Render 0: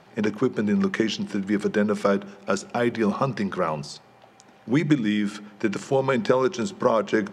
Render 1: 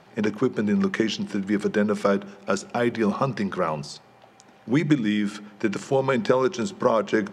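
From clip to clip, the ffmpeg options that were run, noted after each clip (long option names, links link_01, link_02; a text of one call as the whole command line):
ffmpeg -i in.wav -af anull out.wav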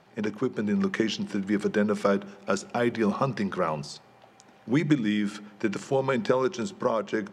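ffmpeg -i in.wav -af "dynaudnorm=framelen=160:gausssize=9:maxgain=3.5dB,volume=-5.5dB" out.wav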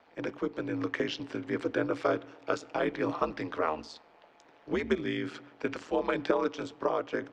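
ffmpeg -i in.wav -filter_complex "[0:a]aeval=exprs='val(0)*sin(2*PI*80*n/s)':channel_layout=same,acrossover=split=250 5100:gain=0.2 1 0.158[link_01][link_02][link_03];[link_01][link_02][link_03]amix=inputs=3:normalize=0" out.wav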